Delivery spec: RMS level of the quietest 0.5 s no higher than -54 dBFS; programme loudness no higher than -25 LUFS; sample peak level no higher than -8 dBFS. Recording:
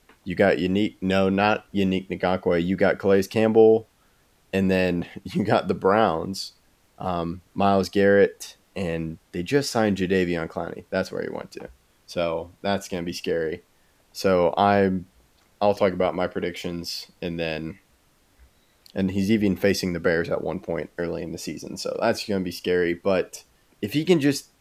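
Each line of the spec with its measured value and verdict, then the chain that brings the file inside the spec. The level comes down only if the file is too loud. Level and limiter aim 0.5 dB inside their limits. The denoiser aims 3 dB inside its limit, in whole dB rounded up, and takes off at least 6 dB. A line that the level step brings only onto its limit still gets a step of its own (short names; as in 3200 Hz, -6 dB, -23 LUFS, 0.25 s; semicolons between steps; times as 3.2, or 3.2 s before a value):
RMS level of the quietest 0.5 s -61 dBFS: OK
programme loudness -24.0 LUFS: fail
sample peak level -4.0 dBFS: fail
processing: gain -1.5 dB; limiter -8.5 dBFS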